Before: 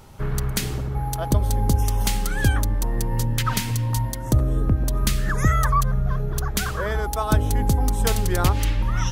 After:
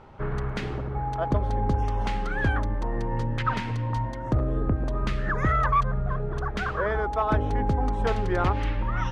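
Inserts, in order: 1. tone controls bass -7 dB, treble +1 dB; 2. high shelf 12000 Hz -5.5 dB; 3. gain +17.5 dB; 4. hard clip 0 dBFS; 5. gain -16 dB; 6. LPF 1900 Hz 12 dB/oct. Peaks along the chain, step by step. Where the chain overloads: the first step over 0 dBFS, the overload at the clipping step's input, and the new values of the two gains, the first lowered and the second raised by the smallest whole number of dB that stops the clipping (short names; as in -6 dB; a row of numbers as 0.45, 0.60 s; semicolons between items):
-7.0, -8.0, +9.5, 0.0, -16.0, -15.5 dBFS; step 3, 9.5 dB; step 3 +7.5 dB, step 5 -6 dB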